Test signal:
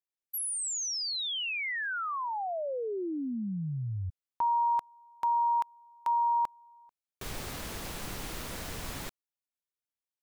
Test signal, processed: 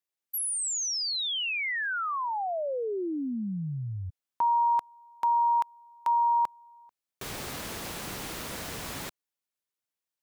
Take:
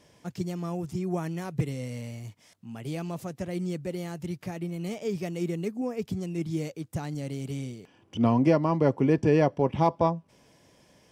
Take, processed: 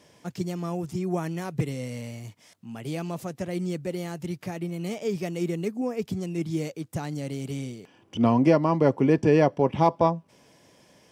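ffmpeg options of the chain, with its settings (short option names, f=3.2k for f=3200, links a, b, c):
-af "highpass=f=120:p=1,volume=3dB"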